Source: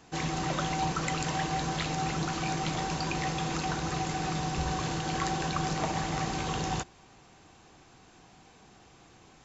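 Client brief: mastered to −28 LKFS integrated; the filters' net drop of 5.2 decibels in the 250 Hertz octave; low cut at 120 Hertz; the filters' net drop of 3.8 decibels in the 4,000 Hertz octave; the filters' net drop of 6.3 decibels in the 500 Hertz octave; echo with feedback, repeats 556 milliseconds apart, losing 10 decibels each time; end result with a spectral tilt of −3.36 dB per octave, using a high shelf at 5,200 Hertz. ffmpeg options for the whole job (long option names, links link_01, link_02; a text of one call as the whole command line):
ffmpeg -i in.wav -af "highpass=120,equalizer=frequency=250:width_type=o:gain=-6,equalizer=frequency=500:width_type=o:gain=-6.5,equalizer=frequency=4000:width_type=o:gain=-7.5,highshelf=frequency=5200:gain=5.5,aecho=1:1:556|1112|1668|2224:0.316|0.101|0.0324|0.0104,volume=6dB" out.wav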